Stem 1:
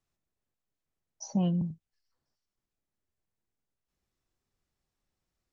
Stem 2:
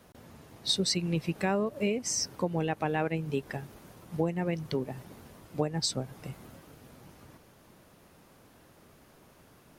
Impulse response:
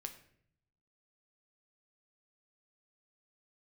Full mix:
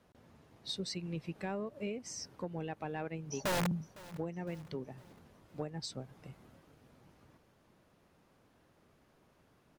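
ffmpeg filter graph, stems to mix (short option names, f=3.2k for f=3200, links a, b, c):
-filter_complex "[0:a]lowshelf=f=83:g=-3.5,aeval=exprs='(mod(16.8*val(0)+1,2)-1)/16.8':c=same,adelay=2100,volume=-2.5dB,asplit=2[a][b];[b]volume=-20.5dB[c];[1:a]highshelf=f=8.1k:g=-11.5,volume=-9.5dB[d];[c]aecho=0:1:508|1016|1524|2032|2540|3048:1|0.46|0.212|0.0973|0.0448|0.0206[e];[a][d][e]amix=inputs=3:normalize=0,asoftclip=type=tanh:threshold=-24dB"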